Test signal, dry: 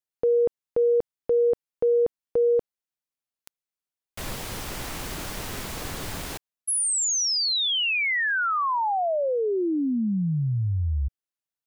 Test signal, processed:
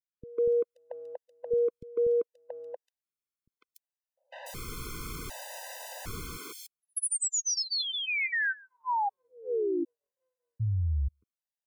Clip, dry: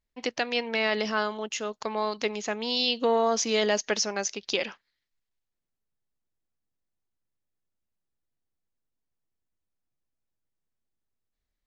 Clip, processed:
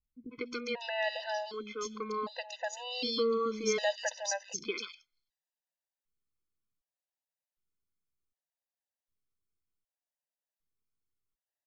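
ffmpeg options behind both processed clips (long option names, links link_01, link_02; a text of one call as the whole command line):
ffmpeg -i in.wav -filter_complex "[0:a]acrossover=split=260|3200[link_01][link_02][link_03];[link_02]adelay=150[link_04];[link_03]adelay=290[link_05];[link_01][link_04][link_05]amix=inputs=3:normalize=0,afftfilt=real='re*gt(sin(2*PI*0.66*pts/sr)*(1-2*mod(floor(b*sr/1024/510),2)),0)':imag='im*gt(sin(2*PI*0.66*pts/sr)*(1-2*mod(floor(b*sr/1024/510),2)),0)':win_size=1024:overlap=0.75,volume=-3dB" out.wav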